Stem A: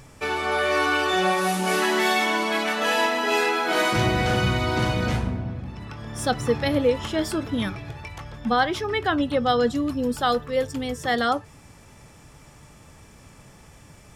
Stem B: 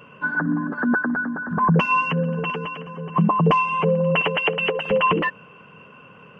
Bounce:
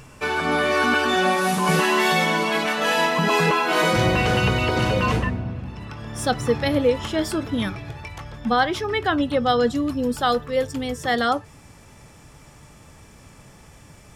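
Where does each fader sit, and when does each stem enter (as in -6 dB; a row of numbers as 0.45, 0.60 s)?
+1.5, -6.5 dB; 0.00, 0.00 s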